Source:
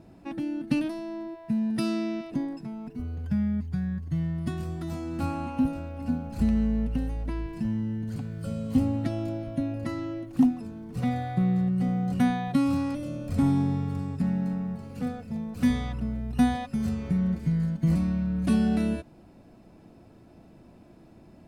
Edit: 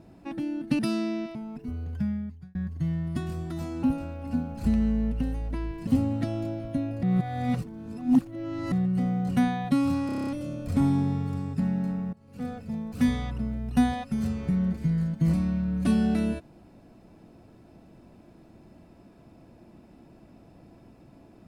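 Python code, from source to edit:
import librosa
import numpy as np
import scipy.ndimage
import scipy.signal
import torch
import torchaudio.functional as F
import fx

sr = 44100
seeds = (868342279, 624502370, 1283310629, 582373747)

y = fx.edit(x, sr, fx.cut(start_s=0.79, length_s=0.95),
    fx.cut(start_s=2.3, length_s=0.36),
    fx.fade_out_span(start_s=3.22, length_s=0.64),
    fx.cut(start_s=5.14, length_s=0.44),
    fx.cut(start_s=7.62, length_s=1.08),
    fx.reverse_span(start_s=9.86, length_s=1.69),
    fx.stutter(start_s=12.89, slice_s=0.03, count=8),
    fx.fade_in_from(start_s=14.75, length_s=0.38, curve='qua', floor_db=-18.5), tone=tone)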